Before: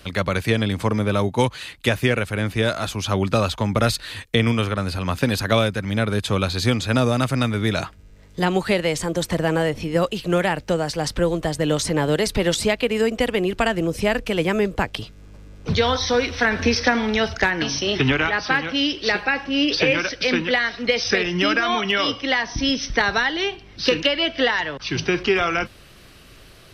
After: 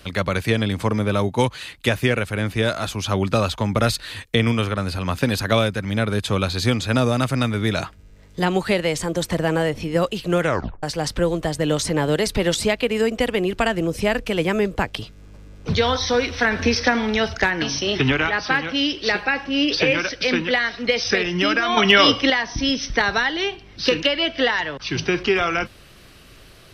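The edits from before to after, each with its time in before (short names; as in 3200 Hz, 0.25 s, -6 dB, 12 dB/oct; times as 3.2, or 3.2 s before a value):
10.39 tape stop 0.44 s
21.77–22.3 gain +7.5 dB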